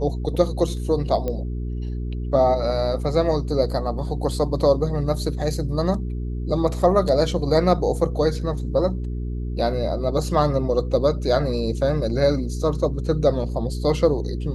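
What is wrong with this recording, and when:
hum 60 Hz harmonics 7 -27 dBFS
1.28 s: pop -15 dBFS

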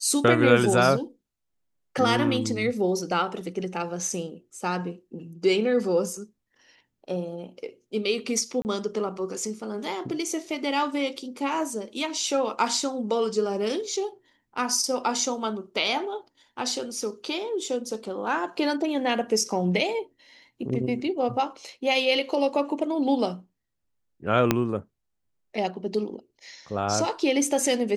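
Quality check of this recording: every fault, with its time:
8.62–8.65 s: dropout 29 ms
24.51 s: pop -5 dBFS

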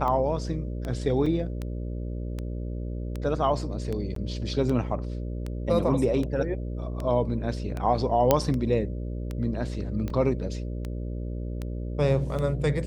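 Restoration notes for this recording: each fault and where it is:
buzz 60 Hz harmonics 10 -32 dBFS
tick 78 rpm -20 dBFS
1.26 s: dropout 4.5 ms
4.15–4.16 s: dropout 13 ms
8.31 s: pop -5 dBFS
10.10 s: dropout 3.2 ms

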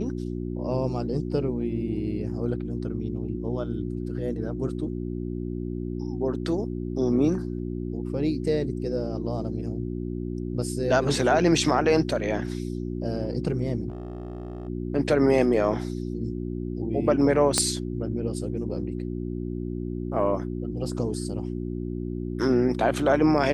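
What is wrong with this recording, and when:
hum 60 Hz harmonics 6 -31 dBFS
13.88–14.69 s: clipped -30.5 dBFS
17.58 s: pop -8 dBFS

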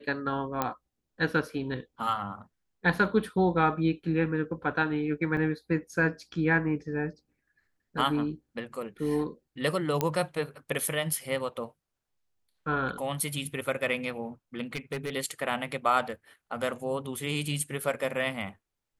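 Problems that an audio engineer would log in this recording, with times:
0.62 s: pop -13 dBFS
5.37 s: dropout 2.2 ms
10.01 s: pop -11 dBFS
14.73–15.10 s: clipped -28 dBFS

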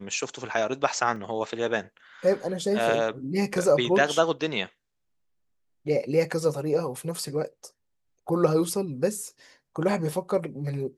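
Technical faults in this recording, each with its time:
1.16 s: dropout 2.2 ms

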